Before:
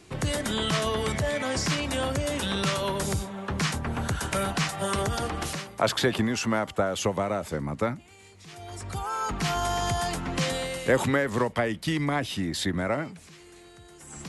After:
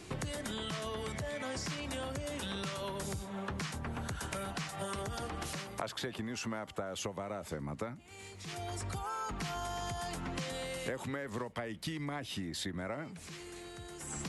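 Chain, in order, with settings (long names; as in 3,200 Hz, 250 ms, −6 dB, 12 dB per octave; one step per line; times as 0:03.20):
downward compressor 8 to 1, threshold −39 dBFS, peak gain reduction 21.5 dB
level +2.5 dB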